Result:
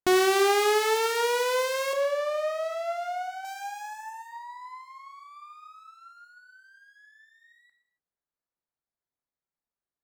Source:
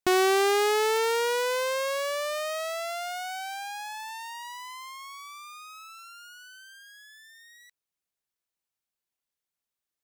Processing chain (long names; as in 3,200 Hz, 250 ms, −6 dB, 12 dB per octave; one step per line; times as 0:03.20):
adaptive Wiener filter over 15 samples
0:01.93–0:03.45: spectral tilt −4 dB per octave
reverb whose tail is shaped and stops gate 310 ms falling, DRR 5.5 dB